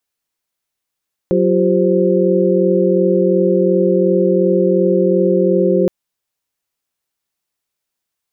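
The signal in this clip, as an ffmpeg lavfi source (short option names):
-f lavfi -i "aevalsrc='0.158*(sin(2*PI*185*t)+sin(2*PI*349.23*t)+sin(2*PI*392*t)+sin(2*PI*523.25*t))':d=4.57:s=44100"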